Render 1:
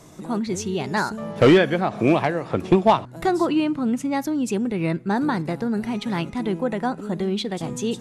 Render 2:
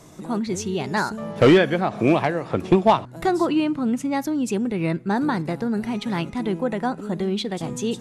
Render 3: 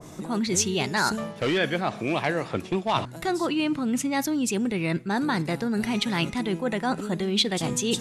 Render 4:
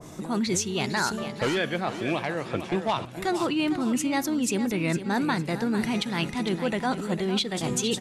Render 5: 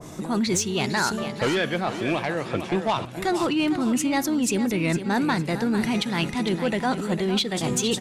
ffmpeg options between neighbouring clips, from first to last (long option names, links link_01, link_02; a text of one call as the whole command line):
ffmpeg -i in.wav -af anull out.wav
ffmpeg -i in.wav -af "areverse,acompressor=threshold=-26dB:ratio=12,areverse,adynamicequalizer=threshold=0.00398:dfrequency=1600:dqfactor=0.7:tfrequency=1600:tqfactor=0.7:attack=5:release=100:ratio=0.375:range=4:mode=boostabove:tftype=highshelf,volume=3.5dB" out.wav
ffmpeg -i in.wav -af "aecho=1:1:455|910|1365|1820:0.282|0.093|0.0307|0.0101,alimiter=limit=-15.5dB:level=0:latency=1:release=312" out.wav
ffmpeg -i in.wav -af "asoftclip=type=tanh:threshold=-16.5dB,volume=3.5dB" out.wav